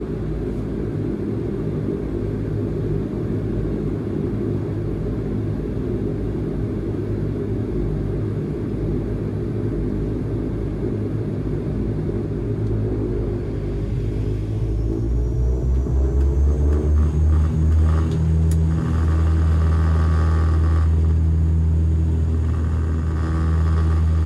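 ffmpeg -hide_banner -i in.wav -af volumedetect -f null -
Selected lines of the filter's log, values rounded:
mean_volume: -19.8 dB
max_volume: -11.1 dB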